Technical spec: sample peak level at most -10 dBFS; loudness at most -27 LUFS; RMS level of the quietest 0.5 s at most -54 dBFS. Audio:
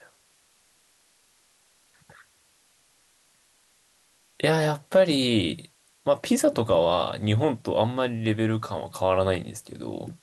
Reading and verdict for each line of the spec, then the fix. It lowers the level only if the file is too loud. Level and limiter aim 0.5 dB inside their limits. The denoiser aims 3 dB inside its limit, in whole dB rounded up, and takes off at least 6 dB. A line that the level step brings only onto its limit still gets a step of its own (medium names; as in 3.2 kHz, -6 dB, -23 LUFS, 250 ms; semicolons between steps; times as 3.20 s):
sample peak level -8.0 dBFS: fail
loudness -24.5 LUFS: fail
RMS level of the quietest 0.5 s -63 dBFS: pass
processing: trim -3 dB